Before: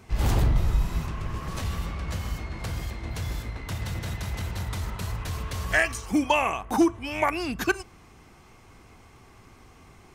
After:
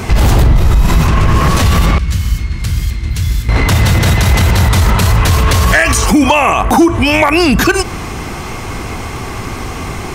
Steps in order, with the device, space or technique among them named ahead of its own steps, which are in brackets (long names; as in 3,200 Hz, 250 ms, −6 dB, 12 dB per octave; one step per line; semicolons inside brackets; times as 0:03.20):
0:01.98–0:03.49: guitar amp tone stack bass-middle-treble 6-0-2
loud club master (downward compressor 2.5 to 1, threshold −26 dBFS, peak gain reduction 7 dB; hard clipping −19.5 dBFS, distortion −28 dB; boost into a limiter +31 dB)
level −1 dB